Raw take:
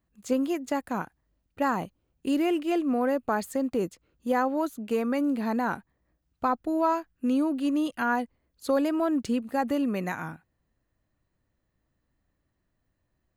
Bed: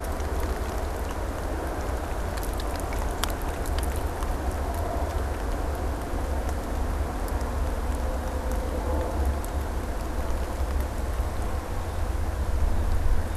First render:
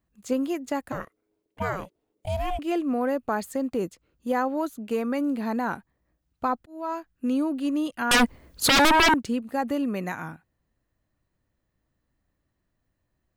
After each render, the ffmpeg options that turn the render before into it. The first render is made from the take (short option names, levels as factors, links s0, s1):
-filter_complex "[0:a]asettb=1/sr,asplit=3[s0][s1][s2];[s0]atrim=end=0.924[s3];[s1]atrim=start=0.92:end=2.59,asetpts=PTS-STARTPTS,afade=t=in:d=0.004:c=qsin,afade=t=out:st=1.666:d=0.004:c=qsin,aeval=exprs='val(0)*sin(2*PI*370*n/s)':c=same[s4];[s2]atrim=start=2.586[s5];[s3][s4]acrossfade=d=0.004:c1=hsin:c2=qsin[s6];[s6][s5]acrossfade=d=0.004:c1=qsin:c2=hsin,asettb=1/sr,asplit=3[s7][s8][s9];[s7]atrim=end=8.114[s10];[s8]atrim=start=8.11:end=9.14,asetpts=PTS-STARTPTS,afade=t=in:d=0.004:c=qsin,afade=t=out:st=1.026:d=0.004:c=qsin,aeval=exprs='0.188*sin(PI/2*7.08*val(0)/0.188)':c=same[s11];[s9]atrim=start=9.136[s12];[s10][s11]acrossfade=d=0.004:c1=hsin:c2=qsin[s13];[s13][s12]acrossfade=d=0.004:c1=qsin:c2=hsin,asplit=2[s14][s15];[s14]atrim=end=6.66,asetpts=PTS-STARTPTS,afade=t=out:st=6.656:d=0.004:c=hsin[s16];[s15]atrim=start=6.66,asetpts=PTS-STARTPTS,afade=t=in:d=0.47[s17];[s16][s17]concat=n=2:v=0:a=1"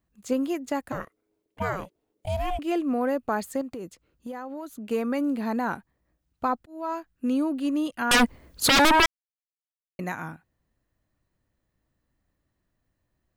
-filter_complex "[0:a]asettb=1/sr,asplit=3[s0][s1][s2];[s0]atrim=end=3.614[s3];[s1]atrim=start=3.61:end=4.89,asetpts=PTS-STARTPTS,afade=t=in:d=0.004:c=qsin,afade=t=out:st=1.276:d=0.004:c=qsin,acompressor=threshold=0.0224:ratio=6:attack=3.2:release=140:knee=1:detection=peak[s4];[s2]atrim=start=4.886[s5];[s3][s4]acrossfade=d=0.004:c1=hsin:c2=qsin[s6];[s6][s5]acrossfade=d=0.004:c1=qsin:c2=hsin,asplit=3[s7][s8][s9];[s7]atrim=end=9.06,asetpts=PTS-STARTPTS,afade=t=out:st=9.056:d=0.004:c=hsin[s10];[s8]atrim=start=9.06:end=9.99,asetpts=PTS-STARTPTS,volume=0[s11];[s9]atrim=start=9.99,asetpts=PTS-STARTPTS,afade=t=in:d=0.004:c=hsin[s12];[s10][s11][s12]concat=n=3:v=0:a=1"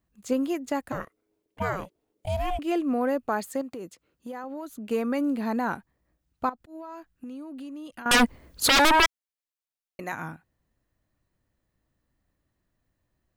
-filter_complex "[0:a]asettb=1/sr,asplit=3[s0][s1][s2];[s0]atrim=end=3.274[s3];[s1]atrim=start=3.27:end=4.44,asetpts=PTS-STARTPTS,afade=t=in:d=0.004:c=qsin,afade=t=out:st=1.166:d=0.004:c=qsin,highpass=f=180:p=1[s4];[s2]atrim=start=4.436[s5];[s3][s4]acrossfade=d=0.004:c1=hsin:c2=qsin[s6];[s6][s5]acrossfade=d=0.004:c1=qsin:c2=hsin,asettb=1/sr,asplit=3[s7][s8][s9];[s7]atrim=end=6.494[s10];[s8]atrim=start=6.49:end=8.06,asetpts=PTS-STARTPTS,afade=t=in:d=0.004:c=qsin,afade=t=out:st=1.566:d=0.004:c=qsin,acompressor=threshold=0.0158:ratio=16:attack=3.2:release=140:knee=1:detection=peak[s11];[s9]atrim=start=8.056[s12];[s10][s11]acrossfade=d=0.004:c1=hsin:c2=qsin[s13];[s13][s12]acrossfade=d=0.004:c1=qsin:c2=hsin,asettb=1/sr,asplit=3[s14][s15][s16];[s14]atrim=end=8.684[s17];[s15]atrim=start=8.68:end=10.13,asetpts=PTS-STARTPTS,afade=t=in:d=0.004:c=qsin,afade=t=out:st=1.446:d=0.004:c=qsin,equalizer=f=160:w=1.2:g=-10.5[s18];[s16]atrim=start=10.126[s19];[s17][s18]acrossfade=d=0.004:c1=hsin:c2=qsin[s20];[s20][s19]acrossfade=d=0.004:c1=qsin:c2=hsin"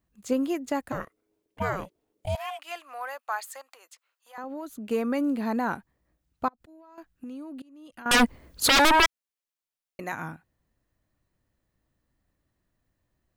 -filter_complex "[0:a]asettb=1/sr,asplit=3[s0][s1][s2];[s0]atrim=end=2.354[s3];[s1]atrim=start=2.35:end=4.38,asetpts=PTS-STARTPTS,afade=t=in:d=0.004:c=qsin,afade=t=out:st=2.026:d=0.004:c=qsin,highpass=f=830:w=0.5412,highpass=f=830:w=1.3066[s4];[s2]atrim=start=4.376[s5];[s3][s4]acrossfade=d=0.004:c1=hsin:c2=qsin[s6];[s6][s5]acrossfade=d=0.004:c1=qsin:c2=hsin,asettb=1/sr,asplit=3[s7][s8][s9];[s7]atrim=end=6.484[s10];[s8]atrim=start=6.48:end=6.98,asetpts=PTS-STARTPTS,afade=t=in:d=0.004:c=qsin,afade=t=out:st=0.496:d=0.004:c=qsin,acompressor=threshold=0.00355:ratio=8:attack=3.2:release=140:knee=1:detection=peak[s11];[s9]atrim=start=6.976[s12];[s10][s11]acrossfade=d=0.004:c1=hsin:c2=qsin[s13];[s13][s12]acrossfade=d=0.004:c1=qsin:c2=hsin,asplit=2[s14][s15];[s14]atrim=end=7.62,asetpts=PTS-STARTPTS,afade=t=out:st=7.616:d=0.004:c=hsin:silence=0.0668344[s16];[s15]atrim=start=7.62,asetpts=PTS-STARTPTS,afade=t=in:d=0.58:silence=0.0668344[s17];[s16][s17]concat=n=2:v=0:a=1"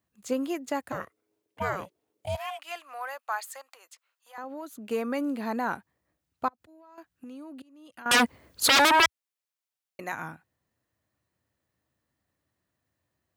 -af "highpass=f=80:w=0.5412,highpass=f=80:w=1.3066,equalizer=f=180:w=0.57:g=-5"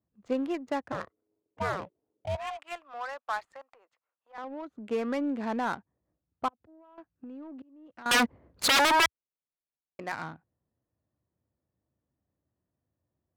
-af "adynamicsmooth=sensitivity=7:basefreq=850,asoftclip=type=tanh:threshold=0.141"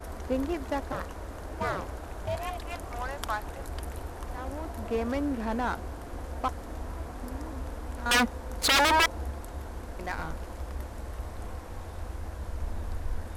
-filter_complex "[1:a]volume=0.335[s0];[0:a][s0]amix=inputs=2:normalize=0"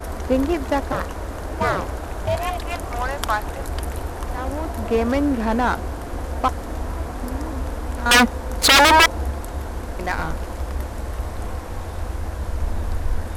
-af "volume=3.16"